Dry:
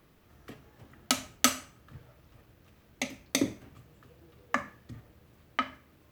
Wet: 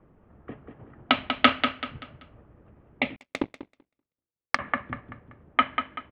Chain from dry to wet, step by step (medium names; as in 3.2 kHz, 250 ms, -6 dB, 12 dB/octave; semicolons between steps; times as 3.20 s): in parallel at -9.5 dB: crossover distortion -38 dBFS; on the sum: harmonic-percussive split harmonic -6 dB; level-controlled noise filter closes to 1 kHz, open at -29 dBFS; steep low-pass 3.4 kHz 48 dB/octave; feedback delay 192 ms, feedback 34%, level -7 dB; 3.16–4.59 s: power-law waveshaper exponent 2; trim +7.5 dB